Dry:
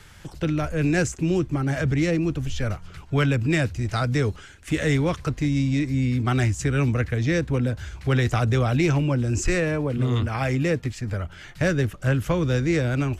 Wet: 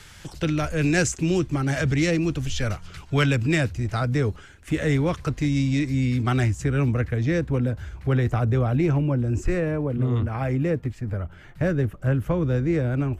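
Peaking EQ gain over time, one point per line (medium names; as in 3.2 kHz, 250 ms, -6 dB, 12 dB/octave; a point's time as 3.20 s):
peaking EQ 5.6 kHz 2.8 oct
3.31 s +5.5 dB
3.93 s -5.5 dB
4.88 s -5.5 dB
5.53 s +2 dB
6.20 s +2 dB
6.61 s -7 dB
7.56 s -7 dB
8.43 s -14.5 dB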